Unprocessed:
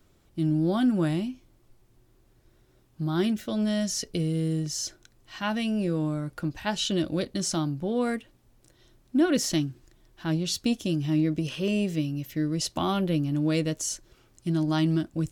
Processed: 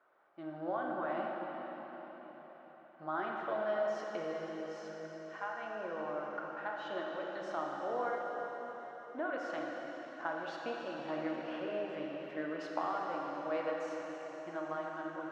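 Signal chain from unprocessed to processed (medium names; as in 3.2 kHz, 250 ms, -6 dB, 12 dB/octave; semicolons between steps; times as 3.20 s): Chebyshev band-pass 650–1500 Hz, order 2; compression, threshold -37 dBFS, peak gain reduction 11.5 dB; random-step tremolo 3.7 Hz; plate-style reverb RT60 4.9 s, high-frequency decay 1×, DRR -2 dB; trim +4.5 dB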